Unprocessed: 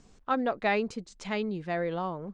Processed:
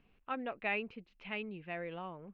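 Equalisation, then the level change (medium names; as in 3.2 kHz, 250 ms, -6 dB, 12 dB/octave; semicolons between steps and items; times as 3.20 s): four-pole ladder low-pass 2.9 kHz, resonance 70%; distance through air 64 m; 0.0 dB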